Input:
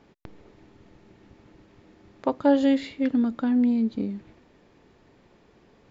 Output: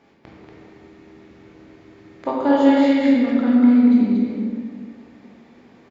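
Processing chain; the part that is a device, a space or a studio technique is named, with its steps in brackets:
stadium PA (high-pass filter 170 Hz 6 dB per octave; parametric band 2,100 Hz +5 dB 0.41 octaves; loudspeakers that aren't time-aligned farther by 66 metres −11 dB, 81 metres −4 dB; convolution reverb RT60 2.0 s, pre-delay 15 ms, DRR −3.5 dB)

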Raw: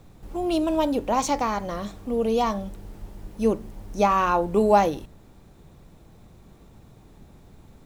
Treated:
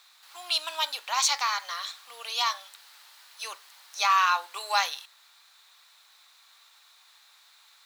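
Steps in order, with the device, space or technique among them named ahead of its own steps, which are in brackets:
headphones lying on a table (high-pass filter 1,200 Hz 24 dB per octave; parametric band 4,100 Hz +10 dB 0.59 octaves)
level +4.5 dB

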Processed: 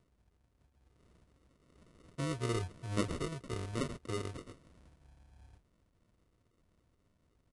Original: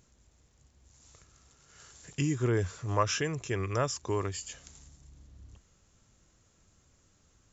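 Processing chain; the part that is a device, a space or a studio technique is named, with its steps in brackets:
crushed at another speed (tape speed factor 2×; decimation without filtering 27×; tape speed factor 0.5×)
level −7 dB

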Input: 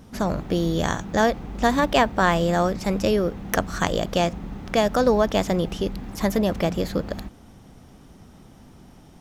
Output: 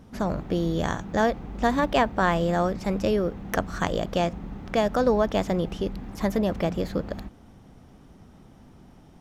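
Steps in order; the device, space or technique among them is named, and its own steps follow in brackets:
behind a face mask (high-shelf EQ 3,500 Hz −7 dB)
level −2.5 dB

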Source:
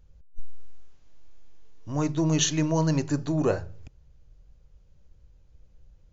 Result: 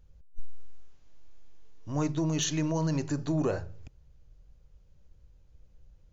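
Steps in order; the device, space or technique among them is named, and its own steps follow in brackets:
clipper into limiter (hard clipping −13.5 dBFS, distortion −37 dB; brickwall limiter −18.5 dBFS, peak gain reduction 5 dB)
level −2 dB

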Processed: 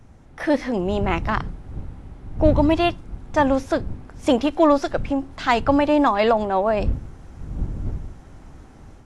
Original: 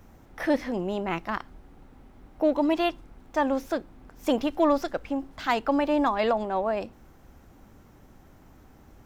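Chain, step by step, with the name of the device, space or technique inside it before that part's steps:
smartphone video outdoors (wind on the microphone 91 Hz −36 dBFS; automatic gain control gain up to 7 dB; AAC 64 kbit/s 24,000 Hz)

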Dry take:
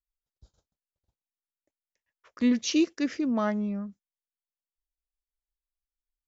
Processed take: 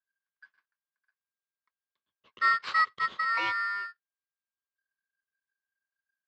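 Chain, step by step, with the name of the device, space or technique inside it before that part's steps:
ring modulator pedal into a guitar cabinet (ring modulator with a square carrier 1,600 Hz; loudspeaker in its box 110–4,000 Hz, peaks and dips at 120 Hz −8 dB, 170 Hz −5 dB, 280 Hz −8 dB, 740 Hz −5 dB, 1,100 Hz +7 dB, 1,600 Hz +5 dB)
level −4 dB

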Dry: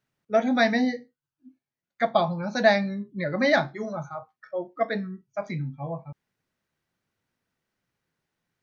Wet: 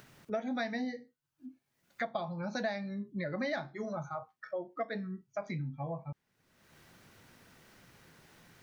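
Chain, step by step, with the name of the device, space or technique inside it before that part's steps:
upward and downward compression (upward compression, threshold −41 dBFS; downward compressor 4 to 1, threshold −35 dBFS, peak gain reduction 18 dB)

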